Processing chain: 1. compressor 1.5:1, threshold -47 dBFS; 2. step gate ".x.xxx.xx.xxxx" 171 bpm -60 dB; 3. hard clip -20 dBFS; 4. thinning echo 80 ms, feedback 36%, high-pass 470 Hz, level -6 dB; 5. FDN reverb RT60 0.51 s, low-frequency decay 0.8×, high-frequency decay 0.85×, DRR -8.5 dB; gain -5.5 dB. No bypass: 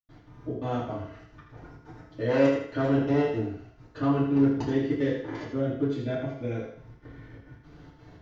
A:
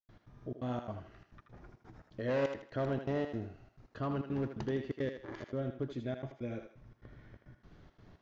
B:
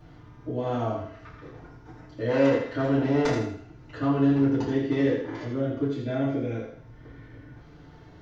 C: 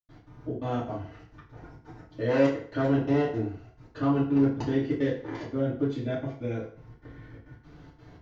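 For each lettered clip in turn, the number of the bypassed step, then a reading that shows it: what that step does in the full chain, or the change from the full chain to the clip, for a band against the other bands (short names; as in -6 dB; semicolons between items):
5, echo-to-direct 9.5 dB to -6.0 dB; 2, loudness change +1.5 LU; 4, momentary loudness spread change +5 LU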